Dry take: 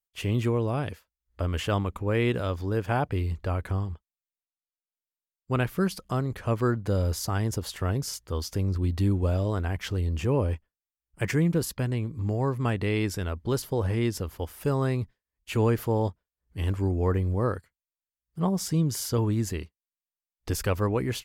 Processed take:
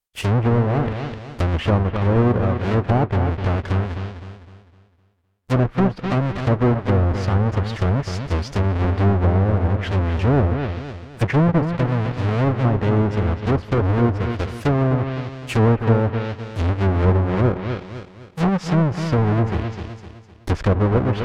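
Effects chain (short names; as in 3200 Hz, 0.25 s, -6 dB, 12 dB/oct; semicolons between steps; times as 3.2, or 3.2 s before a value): half-waves squared off; dark delay 0.255 s, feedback 39%, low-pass 3900 Hz, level -8 dB; treble ducked by the level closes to 1200 Hz, closed at -17.5 dBFS; gain +3.5 dB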